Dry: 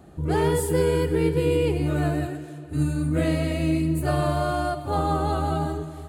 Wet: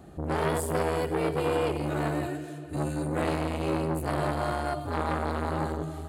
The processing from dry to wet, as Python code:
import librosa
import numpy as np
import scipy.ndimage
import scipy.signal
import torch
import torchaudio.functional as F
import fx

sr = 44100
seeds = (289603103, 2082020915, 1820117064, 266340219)

y = fx.low_shelf(x, sr, hz=170.0, db=-7.5, at=(0.97, 3.22))
y = fx.rider(y, sr, range_db=3, speed_s=2.0)
y = fx.transformer_sat(y, sr, knee_hz=1100.0)